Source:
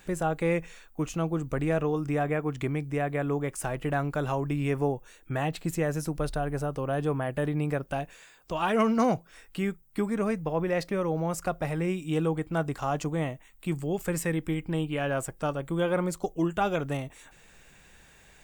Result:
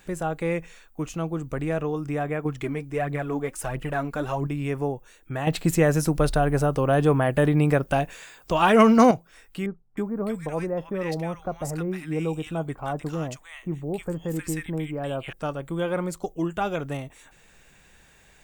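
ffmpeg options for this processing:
-filter_complex "[0:a]asettb=1/sr,asplit=3[s0][s1][s2];[s0]atrim=end=2.454[s3];[s1]atrim=start=2.45:end=4.47,asetpts=PTS-STARTPTS,afade=t=in:d=0.004:c=qsin,afade=t=out:st=2.016:d=0.004:c=qsin,aphaser=in_gain=1:out_gain=1:delay=4.7:decay=0.52:speed=1.5:type=triangular[s4];[s2]atrim=start=4.466[s5];[s3][s4]acrossfade=d=0.004:c1=hsin:c2=qsin[s6];[s6][s5]acrossfade=d=0.004:c1=qsin:c2=hsin,asettb=1/sr,asplit=3[s7][s8][s9];[s7]atrim=end=9.664[s10];[s8]atrim=start=9.66:end=15.33,asetpts=PTS-STARTPTS,afade=t=in:d=0.004:c=qsin,afade=t=out:st=5.666:d=0.004:c=qsin,acrossover=split=1300[s11][s12];[s12]adelay=310[s13];[s11][s13]amix=inputs=2:normalize=0,atrim=end_sample=250047[s14];[s9]atrim=start=15.326[s15];[s10][s14]acrossfade=d=0.004:c1=hsin:c2=qsin[s16];[s16][s15]acrossfade=d=0.004:c1=qsin:c2=hsin,asplit=3[s17][s18][s19];[s17]atrim=end=5.472[s20];[s18]atrim=start=5.468:end=9.112,asetpts=PTS-STARTPTS,volume=2.66[s21];[s19]atrim=start=9.108[s22];[s20][s21]acrossfade=d=0.004:c1=hsin:c2=hsin[s23];[s23][s22]acrossfade=d=0.004:c1=hsin:c2=hsin"

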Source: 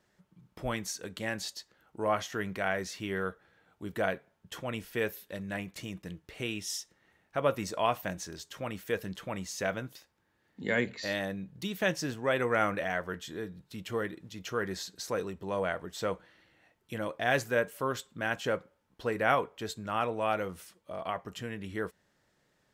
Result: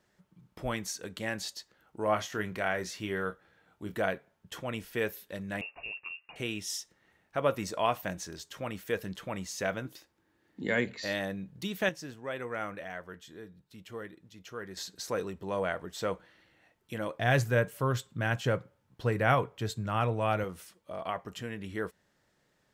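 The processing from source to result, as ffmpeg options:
-filter_complex "[0:a]asettb=1/sr,asplit=3[s0][s1][s2];[s0]atrim=end=2.054[s3];[s1]atrim=start=2.05:end=4,asetpts=PTS-STARTPTS,afade=t=in:d=0.004:c=qsin,afade=t=out:st=1.946:d=0.004:c=qsin,asplit=2[s4][s5];[s5]adelay=28,volume=0.282[s6];[s4][s6]amix=inputs=2:normalize=0,atrim=end_sample=85995[s7];[s2]atrim=start=3.996[s8];[s3][s7]acrossfade=d=0.004:c1=hsin:c2=qsin[s9];[s9][s8]acrossfade=d=0.004:c1=qsin:c2=hsin,asettb=1/sr,asplit=3[s10][s11][s12];[s10]atrim=end=5.614[s13];[s11]atrim=start=5.61:end=6.36,asetpts=PTS-STARTPTS,afade=t=in:d=0.004:c=qsin,afade=t=out:st=0.746:d=0.004:c=qsin,lowpass=f=2500:t=q:w=0.5098,lowpass=f=2500:t=q:w=0.6013,lowpass=f=2500:t=q:w=0.9,lowpass=f=2500:t=q:w=2.563,afreqshift=-2900[s14];[s12]atrim=start=6.356[s15];[s13][s14]acrossfade=d=0.004:c1=hsin:c2=qsin[s16];[s16][s15]acrossfade=d=0.004:c1=qsin:c2=hsin,asettb=1/sr,asplit=3[s17][s18][s19];[s17]atrim=end=9.854[s20];[s18]atrim=start=9.85:end=10.67,asetpts=PTS-STARTPTS,afade=t=in:d=0.004:c=qsin,afade=t=out:st=0.816:d=0.004:c=qsin,equalizer=f=320:w=2.6:g=8.5[s21];[s19]atrim=start=10.666[s22];[s20][s21]acrossfade=d=0.004:c1=hsin:c2=qsin[s23];[s23][s22]acrossfade=d=0.004:c1=qsin:c2=hsin,asettb=1/sr,asplit=3[s24][s25][s26];[s24]atrim=end=17.194[s27];[s25]atrim=start=17.19:end=20.44,asetpts=PTS-STARTPTS,afade=t=in:d=0.004:c=qsin,afade=t=out:st=3.246:d=0.004:c=qsin,equalizer=f=120:w=1.7:g=14[s28];[s26]atrim=start=20.436[s29];[s27][s28]acrossfade=d=0.004:c1=hsin:c2=qsin[s30];[s30][s29]acrossfade=d=0.004:c1=qsin:c2=hsin,asplit=3[s31][s32][s33];[s31]atrim=end=11.892[s34];[s32]atrim=start=11.888:end=14.772,asetpts=PTS-STARTPTS,volume=0.376[s35];[s33]atrim=start=14.768[s36];[s34][s35]acrossfade=d=0.004:c1=hsin:c2=hsin[s37];[s37][s36]acrossfade=d=0.004:c1=hsin:c2=hsin"

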